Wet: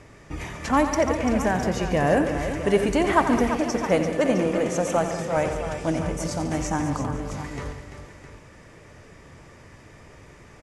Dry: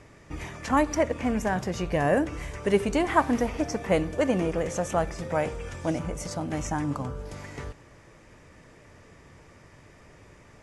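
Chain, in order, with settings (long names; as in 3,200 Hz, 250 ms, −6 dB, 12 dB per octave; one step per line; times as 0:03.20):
0:03.50–0:05.37: high-pass filter 120 Hz 12 dB per octave
in parallel at −7 dB: soft clipping −20 dBFS, distortion −12 dB
on the sum: multi-tap delay 88/143/201/341/508/661 ms −10.5/−13/−14/−9.5/−19.5/−12.5 dB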